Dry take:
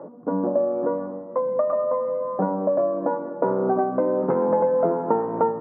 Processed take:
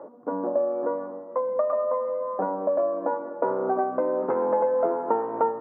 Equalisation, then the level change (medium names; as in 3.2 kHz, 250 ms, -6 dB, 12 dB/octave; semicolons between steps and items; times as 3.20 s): peaking EQ 170 Hz -10.5 dB 0.32 oct; bass shelf 270 Hz -12 dB; 0.0 dB